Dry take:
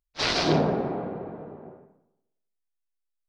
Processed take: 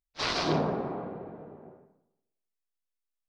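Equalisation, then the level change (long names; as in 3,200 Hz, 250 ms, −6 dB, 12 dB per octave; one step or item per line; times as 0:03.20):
dynamic equaliser 1,100 Hz, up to +6 dB, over −46 dBFS, Q 3
−5.5 dB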